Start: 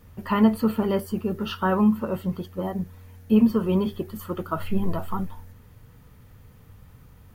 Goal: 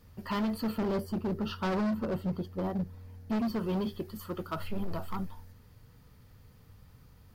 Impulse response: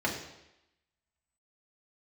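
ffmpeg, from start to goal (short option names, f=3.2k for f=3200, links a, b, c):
-filter_complex "[0:a]asettb=1/sr,asplit=3[a][b][c];[a]atrim=end=0.784[d];[b]atrim=start=0.78:end=3.36,asetpts=PTS-STARTPTS,afade=t=in:d=0.004:c=qsin,afade=t=out:st=2.576:d=0.004:c=qsin,tiltshelf=f=1.2k:g=5[e];[c]atrim=start=3.356[f];[d][e]acrossfade=d=0.004:c1=hsin:c2=qsin[g];[g][f]acrossfade=d=0.004:c1=qsin:c2=hsin,asoftclip=type=hard:threshold=-21dB,equalizer=f=4.7k:t=o:w=0.52:g=8,volume=-6.5dB"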